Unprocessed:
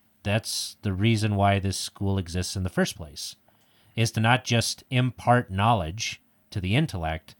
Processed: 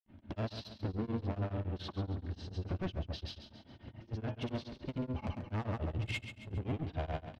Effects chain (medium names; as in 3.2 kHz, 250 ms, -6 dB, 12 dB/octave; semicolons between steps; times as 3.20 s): low-pass 3.4 kHz 24 dB/octave; de-esser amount 95%; tilt shelf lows +7.5 dB, about 730 Hz; comb 3.3 ms, depth 39%; in parallel at -2 dB: peak limiter -17.5 dBFS, peak gain reduction 10.5 dB; on the sum: compression 6:1, threshold -26 dBFS, peak gain reduction 15 dB; saturation -34 dBFS, distortion -7 dB; granulator; on a send: feedback delay 136 ms, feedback 47%, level -10 dB; on the sum: tremolo of two beating tones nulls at 7 Hz; trim +3.5 dB